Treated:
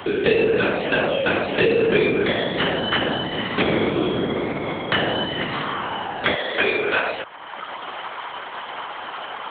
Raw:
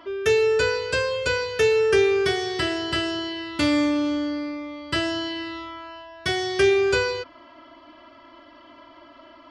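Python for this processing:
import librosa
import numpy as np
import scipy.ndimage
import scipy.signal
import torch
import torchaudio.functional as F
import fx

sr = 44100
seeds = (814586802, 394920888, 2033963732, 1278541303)

y = fx.lpc_vocoder(x, sr, seeds[0], excitation='whisper', order=8)
y = fx.highpass(y, sr, hz=fx.steps((0.0, 210.0), (6.35, 670.0)), slope=12)
y = fx.band_squash(y, sr, depth_pct=70)
y = y * 10.0 ** (5.5 / 20.0)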